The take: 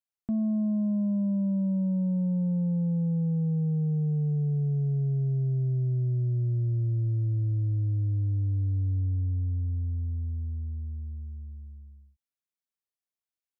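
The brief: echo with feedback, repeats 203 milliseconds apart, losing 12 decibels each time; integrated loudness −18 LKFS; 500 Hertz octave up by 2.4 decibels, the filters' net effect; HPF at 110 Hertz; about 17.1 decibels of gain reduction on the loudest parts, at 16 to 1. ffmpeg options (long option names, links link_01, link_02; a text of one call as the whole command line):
ffmpeg -i in.wav -af "highpass=110,equalizer=frequency=500:width_type=o:gain=3,acompressor=threshold=-42dB:ratio=16,aecho=1:1:203|406|609:0.251|0.0628|0.0157,volume=27.5dB" out.wav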